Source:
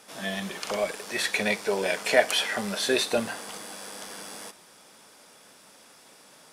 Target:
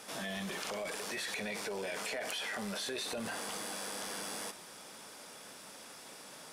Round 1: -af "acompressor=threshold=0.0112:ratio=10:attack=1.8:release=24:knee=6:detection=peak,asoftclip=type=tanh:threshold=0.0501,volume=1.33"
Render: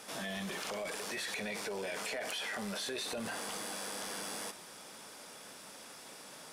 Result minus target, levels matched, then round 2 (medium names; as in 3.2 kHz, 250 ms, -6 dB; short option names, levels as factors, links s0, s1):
saturation: distortion +15 dB
-af "acompressor=threshold=0.0112:ratio=10:attack=1.8:release=24:knee=6:detection=peak,asoftclip=type=tanh:threshold=0.141,volume=1.33"